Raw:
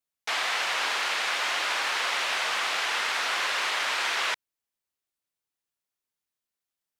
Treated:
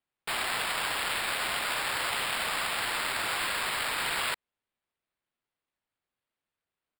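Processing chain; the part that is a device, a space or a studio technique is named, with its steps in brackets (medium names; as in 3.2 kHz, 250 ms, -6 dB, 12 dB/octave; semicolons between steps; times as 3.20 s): crushed at another speed (playback speed 0.8×; sample-and-hold 9×; playback speed 1.25×); trim -3 dB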